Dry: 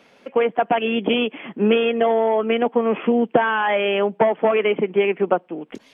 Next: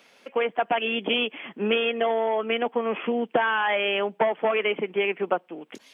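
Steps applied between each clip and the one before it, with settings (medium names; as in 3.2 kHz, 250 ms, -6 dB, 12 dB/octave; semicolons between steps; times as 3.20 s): tilt EQ +2.5 dB/octave; trim -4 dB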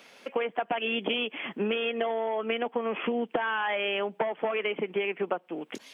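compression, threshold -29 dBFS, peak gain reduction 11.5 dB; trim +3 dB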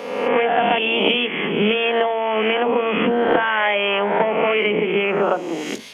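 reverse spectral sustain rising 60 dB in 1.18 s; on a send at -16.5 dB: reverberation RT60 0.20 s, pre-delay 23 ms; on the sum: trim +8 dB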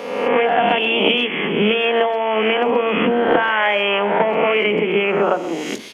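speakerphone echo 130 ms, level -16 dB; trim +1.5 dB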